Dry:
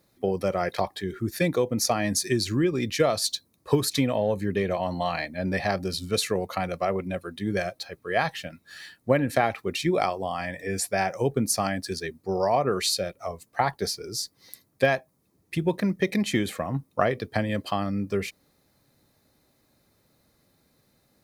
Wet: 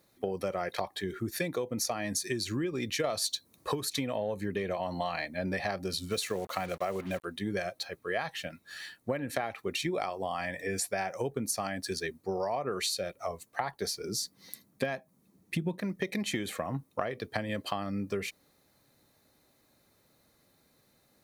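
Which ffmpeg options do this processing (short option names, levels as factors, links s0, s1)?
-filter_complex "[0:a]asettb=1/sr,asplit=3[s0][s1][s2];[s0]atrim=end=3.044[s3];[s1]atrim=start=3.04:end=3.72,asetpts=PTS-STARTPTS,afade=t=in:d=0.004:c=qsin,afade=t=out:st=0.676:d=0.004:c=qsin,acontrast=88[s4];[s2]atrim=start=3.716[s5];[s3][s4]acrossfade=d=0.004:c1=hsin:c2=qsin[s6];[s6][s5]acrossfade=d=0.004:c1=qsin:c2=hsin,asplit=3[s7][s8][s9];[s7]afade=t=out:st=6.1:d=0.02[s10];[s8]acrusher=bits=6:mix=0:aa=0.5,afade=t=in:st=6.1:d=0.02,afade=t=out:st=7.23:d=0.02[s11];[s9]afade=t=in:st=7.23:d=0.02[s12];[s10][s11][s12]amix=inputs=3:normalize=0,asettb=1/sr,asplit=3[s13][s14][s15];[s13]atrim=end=14.044[s16];[s14]atrim=start=14.04:end=15.79,asetpts=PTS-STARTPTS,afade=t=in:d=0.004:c=qsin,afade=t=out:st=1.746:d=0.004:c=qsin,equalizer=f=200:t=o:w=0.77:g=12[s17];[s15]atrim=start=15.786[s18];[s16][s17]acrossfade=d=0.004:c1=hsin:c2=qsin[s19];[s19][s18]acrossfade=d=0.004:c1=qsin:c2=hsin,lowshelf=f=260:g=-5.5,bandreject=f=5000:w=16,acompressor=threshold=0.0355:ratio=6"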